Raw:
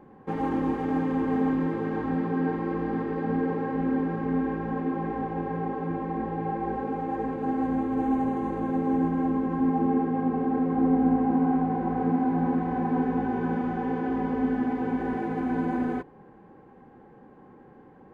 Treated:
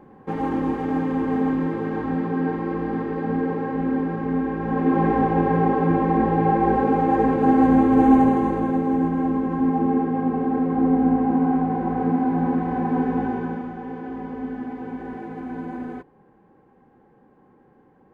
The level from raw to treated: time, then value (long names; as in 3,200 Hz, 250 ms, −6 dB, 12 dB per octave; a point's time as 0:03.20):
0:04.53 +3 dB
0:05.00 +11 dB
0:08.16 +11 dB
0:08.89 +3.5 dB
0:13.26 +3.5 dB
0:13.73 −4.5 dB